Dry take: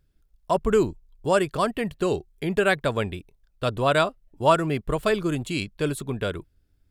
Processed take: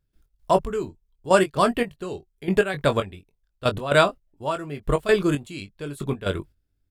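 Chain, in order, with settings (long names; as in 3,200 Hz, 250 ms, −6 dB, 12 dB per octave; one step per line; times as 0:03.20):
gate pattern ".x.xx...." 115 BPM −12 dB
double-tracking delay 21 ms −8 dB
level +3.5 dB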